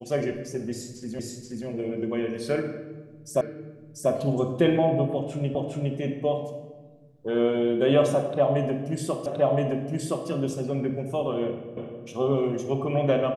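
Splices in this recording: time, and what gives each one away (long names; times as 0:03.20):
0:01.19: the same again, the last 0.48 s
0:03.41: the same again, the last 0.69 s
0:05.55: the same again, the last 0.41 s
0:09.26: the same again, the last 1.02 s
0:11.77: the same again, the last 0.26 s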